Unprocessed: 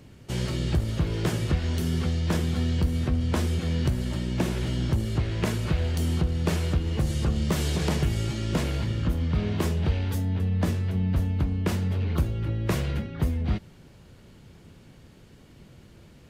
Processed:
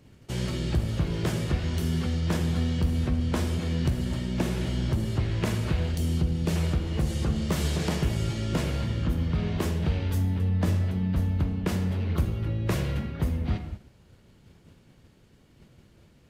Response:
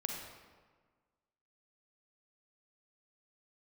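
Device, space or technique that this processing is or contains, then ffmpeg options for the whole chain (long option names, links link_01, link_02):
keyed gated reverb: -filter_complex "[0:a]asplit=3[link_01][link_02][link_03];[1:a]atrim=start_sample=2205[link_04];[link_02][link_04]afir=irnorm=-1:irlink=0[link_05];[link_03]apad=whole_len=718537[link_06];[link_05][link_06]sidechaingate=range=-33dB:threshold=-47dB:ratio=16:detection=peak,volume=-0.5dB[link_07];[link_01][link_07]amix=inputs=2:normalize=0,asettb=1/sr,asplit=3[link_08][link_09][link_10];[link_08]atrim=end=5.924[link_11];[link_09]atrim=start=5.92:end=6.56,asetpts=PTS-STARTPTS,afade=type=in:duration=0.004:curve=qsin,afade=type=out:start_time=0.636:duration=0.004:curve=qsin,equalizer=frequency=1200:width=0.7:gain=-5.5[link_12];[link_10]atrim=start=6.556[link_13];[link_11][link_12]acrossfade=duration=0.004:curve1=hsin:curve2=qsin[link_14];[link_14][link_13]acrossfade=duration=0.004:curve1=qsin:curve2=hsin,volume=-7dB"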